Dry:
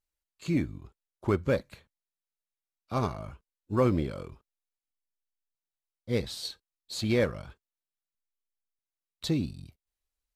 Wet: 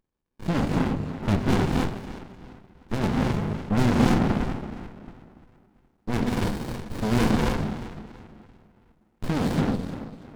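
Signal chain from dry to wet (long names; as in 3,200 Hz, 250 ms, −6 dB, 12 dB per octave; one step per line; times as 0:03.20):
hollow resonant body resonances 230/510/860/1,700 Hz, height 11 dB, ringing for 25 ms
in parallel at −3.5 dB: sine wavefolder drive 11 dB, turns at −13.5 dBFS
on the sum: low-shelf EQ 86 Hz −10.5 dB
notch filter 770 Hz, Q 12
tape delay 339 ms, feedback 43%, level −9.5 dB, low-pass 2,500 Hz
reverb whose tail is shaped and stops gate 320 ms rising, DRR −1.5 dB
windowed peak hold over 65 samples
level −3 dB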